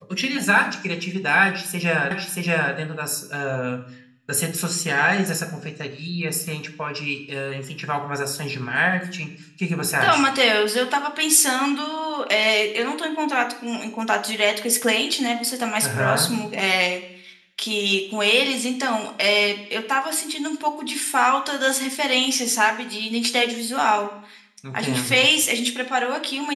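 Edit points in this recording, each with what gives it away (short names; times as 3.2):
2.11 repeat of the last 0.63 s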